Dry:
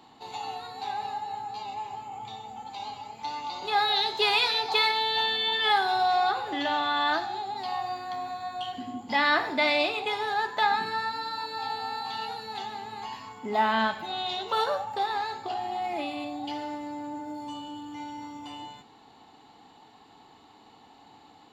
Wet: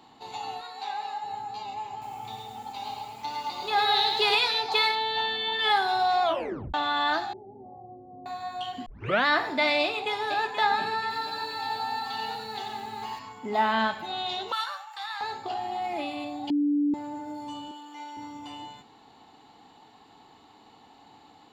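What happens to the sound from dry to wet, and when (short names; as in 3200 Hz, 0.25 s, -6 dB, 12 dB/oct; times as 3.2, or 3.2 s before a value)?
0.61–1.24 weighting filter A
1.91–4.35 lo-fi delay 0.107 s, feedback 35%, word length 9-bit, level -3.5 dB
4.95–5.59 high shelf 5200 Hz -10 dB
6.23 tape stop 0.51 s
7.33–8.26 Chebyshev low-pass 570 Hz, order 4
8.86 tape start 0.40 s
9.82–10.47 echo throw 0.48 s, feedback 45%, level -8.5 dB
11.01–13.19 lo-fi delay 91 ms, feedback 35%, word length 9-bit, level -5 dB
14.52–15.21 HPF 1100 Hz 24 dB/oct
16.5–16.94 bleep 291 Hz -21 dBFS
17.71–18.17 HPF 460 Hz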